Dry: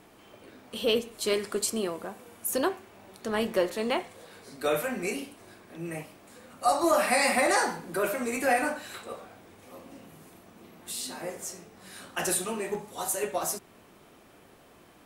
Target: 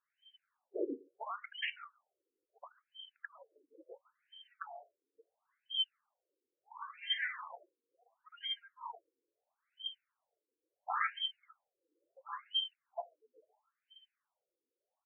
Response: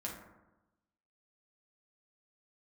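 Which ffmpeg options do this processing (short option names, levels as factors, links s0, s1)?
-filter_complex "[0:a]afftfilt=real='real(if(lt(b,272),68*(eq(floor(b/68),0)*2+eq(floor(b/68),1)*3+eq(floor(b/68),2)*0+eq(floor(b/68),3)*1)+mod(b,68),b),0)':imag='imag(if(lt(b,272),68*(eq(floor(b/68),0)*2+eq(floor(b/68),1)*3+eq(floor(b/68),2)*0+eq(floor(b/68),3)*1)+mod(b,68),b),0)':win_size=2048:overlap=0.75,afftdn=nr=27:nf=-43,acompressor=threshold=0.02:ratio=10,asplit=2[s0][s1];[s1]adelay=140,highpass=300,lowpass=3400,asoftclip=type=hard:threshold=0.0211,volume=0.0631[s2];[s0][s2]amix=inputs=2:normalize=0,afftfilt=real='re*between(b*sr/1024,360*pow(2300/360,0.5+0.5*sin(2*PI*0.73*pts/sr))/1.41,360*pow(2300/360,0.5+0.5*sin(2*PI*0.73*pts/sr))*1.41)':imag='im*between(b*sr/1024,360*pow(2300/360,0.5+0.5*sin(2*PI*0.73*pts/sr))/1.41,360*pow(2300/360,0.5+0.5*sin(2*PI*0.73*pts/sr))*1.41)':win_size=1024:overlap=0.75,volume=4.22"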